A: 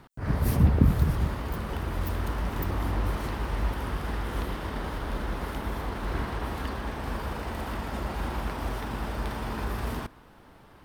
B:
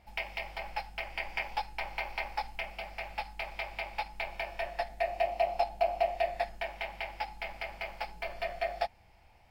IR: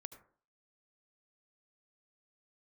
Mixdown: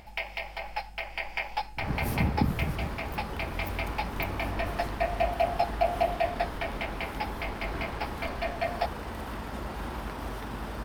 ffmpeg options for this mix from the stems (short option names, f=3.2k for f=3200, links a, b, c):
-filter_complex "[0:a]acrossover=split=140[a][b];[a]acompressor=threshold=-38dB:ratio=1.5[c];[c][b]amix=inputs=2:normalize=0,adelay=1600,volume=-3dB[d];[1:a]volume=2.5dB[e];[d][e]amix=inputs=2:normalize=0,acompressor=mode=upward:threshold=-44dB:ratio=2.5"